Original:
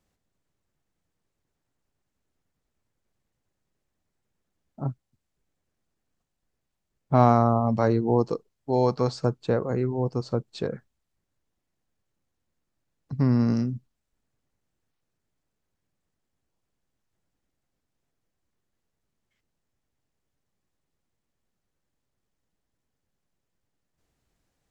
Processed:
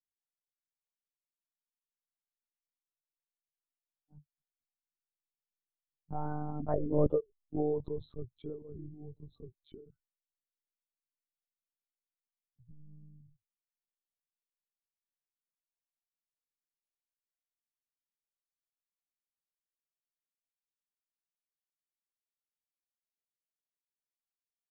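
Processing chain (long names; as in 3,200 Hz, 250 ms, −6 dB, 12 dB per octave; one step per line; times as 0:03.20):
expanding power law on the bin magnitudes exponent 2.1
source passing by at 0:07.20, 49 m/s, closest 7.5 metres
dynamic equaliser 670 Hz, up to +4 dB, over −46 dBFS, Q 4.2
one-pitch LPC vocoder at 8 kHz 150 Hz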